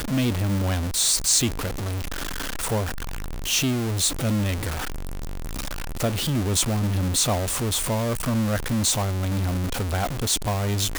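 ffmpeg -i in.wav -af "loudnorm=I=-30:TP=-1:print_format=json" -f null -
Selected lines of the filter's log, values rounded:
"input_i" : "-24.0",
"input_tp" : "-2.7",
"input_lra" : "2.6",
"input_thresh" : "-34.2",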